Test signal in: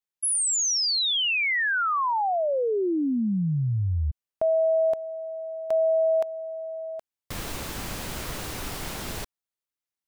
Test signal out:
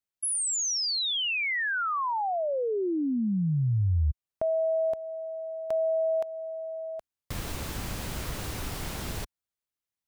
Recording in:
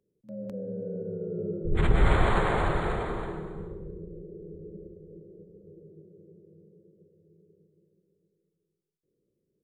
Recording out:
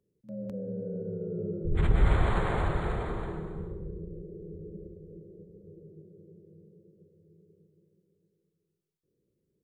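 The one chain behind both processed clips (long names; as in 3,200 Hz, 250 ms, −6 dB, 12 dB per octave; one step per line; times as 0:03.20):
parametric band 67 Hz +6.5 dB 2.8 octaves
in parallel at −2 dB: downward compressor, threshold −30 dBFS
on the sum: level −7 dB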